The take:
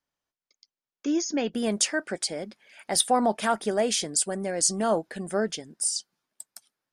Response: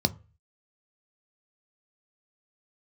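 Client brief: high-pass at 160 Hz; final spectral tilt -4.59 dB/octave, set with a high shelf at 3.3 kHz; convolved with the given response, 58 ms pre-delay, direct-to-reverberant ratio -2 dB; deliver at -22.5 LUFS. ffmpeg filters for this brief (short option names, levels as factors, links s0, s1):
-filter_complex "[0:a]highpass=160,highshelf=f=3300:g=-6,asplit=2[s0][s1];[1:a]atrim=start_sample=2205,adelay=58[s2];[s1][s2]afir=irnorm=-1:irlink=0,volume=0.447[s3];[s0][s3]amix=inputs=2:normalize=0,volume=0.794"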